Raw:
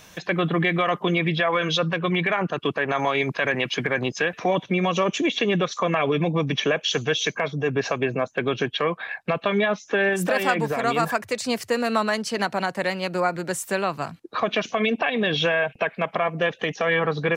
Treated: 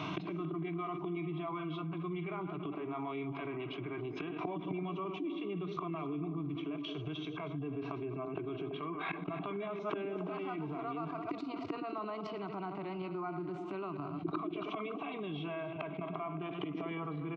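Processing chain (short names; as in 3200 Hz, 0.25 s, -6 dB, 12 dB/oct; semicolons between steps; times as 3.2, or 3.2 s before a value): reverse delay 0.11 s, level -13.5 dB; recorder AGC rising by 19 dB/s; flipped gate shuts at -19 dBFS, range -28 dB; speaker cabinet 130–2800 Hz, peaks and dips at 290 Hz +9 dB, 480 Hz -4 dB, 820 Hz -7 dB, 1200 Hz +4 dB, 2000 Hz +4 dB; fixed phaser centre 350 Hz, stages 8; delay with a stepping band-pass 0.112 s, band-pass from 230 Hz, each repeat 0.7 oct, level -9.5 dB; harmonic-percussive split percussive -9 dB; on a send: echo 0.275 s -18.5 dB; on the sum: fast leveller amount 70%; gain +4.5 dB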